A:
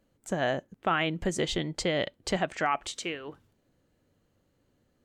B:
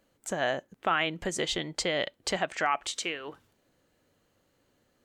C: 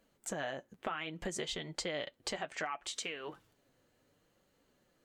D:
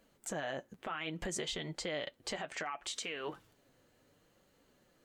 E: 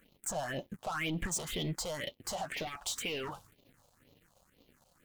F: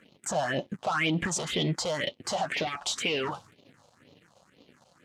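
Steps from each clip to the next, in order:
in parallel at -0.5 dB: compressor, threshold -38 dBFS, peak gain reduction 15 dB; on the sum: low shelf 350 Hz -10.5 dB
compressor 6:1, threshold -33 dBFS, peak gain reduction 11 dB; flange 0.65 Hz, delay 4.2 ms, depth 4.3 ms, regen -42%; gain +1.5 dB
limiter -32.5 dBFS, peak gain reduction 9.5 dB; gain +3.5 dB
sample leveller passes 3; phaser stages 4, 2 Hz, lowest notch 300–1600 Hz
BPF 120–6000 Hz; gain +8.5 dB

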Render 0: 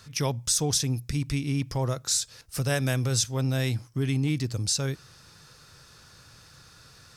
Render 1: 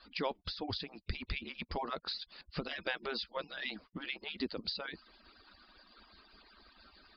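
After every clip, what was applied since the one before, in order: median-filter separation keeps percussive; compressor 6:1, threshold -29 dBFS, peak gain reduction 8 dB; Chebyshev low-pass 4800 Hz, order 8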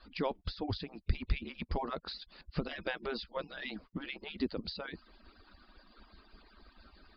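tilt -2 dB/oct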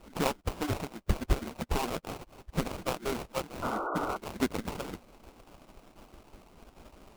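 spectral whitening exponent 0.6; sample-rate reducer 1800 Hz, jitter 20%; painted sound noise, 3.62–4.17, 270–1500 Hz -38 dBFS; gain +4.5 dB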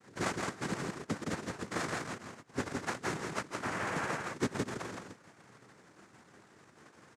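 noise vocoder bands 3; echo 0.166 s -3.5 dB; gain -4 dB

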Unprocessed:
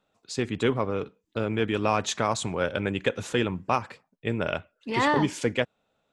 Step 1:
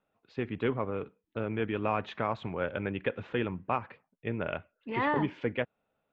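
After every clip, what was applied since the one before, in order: LPF 2800 Hz 24 dB/oct; gain -5.5 dB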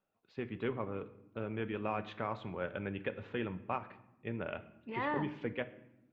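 reverb RT60 0.90 s, pre-delay 5 ms, DRR 11 dB; gain -6.5 dB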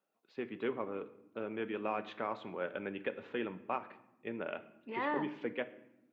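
Chebyshev high-pass 280 Hz, order 2; gain +1 dB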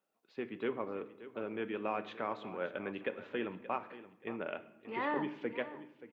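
feedback echo 0.578 s, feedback 24%, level -15 dB

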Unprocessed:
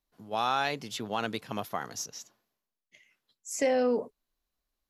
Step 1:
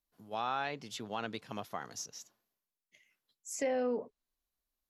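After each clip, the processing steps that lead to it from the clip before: treble ducked by the level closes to 3000 Hz, closed at -25 dBFS; high shelf 11000 Hz +11.5 dB; gain -6.5 dB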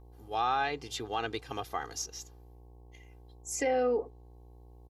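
buzz 60 Hz, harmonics 18, -59 dBFS -6 dB/oct; comb 2.5 ms, depth 75%; gain +3 dB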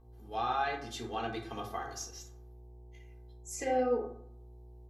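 reverb RT60 0.65 s, pre-delay 4 ms, DRR -1 dB; gain -6.5 dB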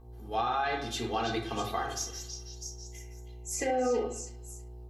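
limiter -27.5 dBFS, peak gain reduction 8 dB; delay with a stepping band-pass 0.325 s, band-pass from 4000 Hz, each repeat 0.7 oct, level -3 dB; gain +6.5 dB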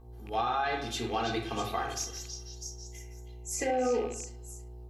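rattling part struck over -40 dBFS, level -38 dBFS

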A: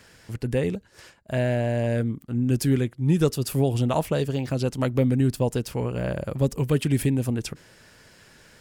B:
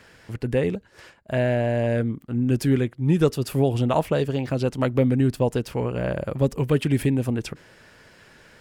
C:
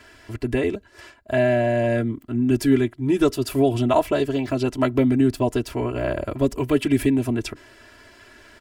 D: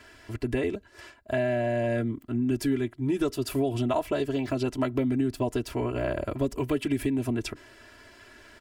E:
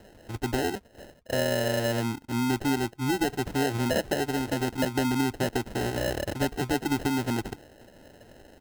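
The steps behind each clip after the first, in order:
tone controls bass -3 dB, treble -8 dB; gain +3 dB
comb 3 ms, depth 98%
compressor 3:1, threshold -21 dBFS, peak gain reduction 7.5 dB; gain -3 dB
sample-and-hold 38×

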